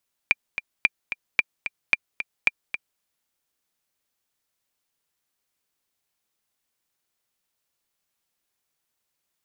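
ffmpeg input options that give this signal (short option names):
-f lavfi -i "aevalsrc='pow(10,(-4-10.5*gte(mod(t,2*60/222),60/222))/20)*sin(2*PI*2380*mod(t,60/222))*exp(-6.91*mod(t,60/222)/0.03)':d=2.7:s=44100"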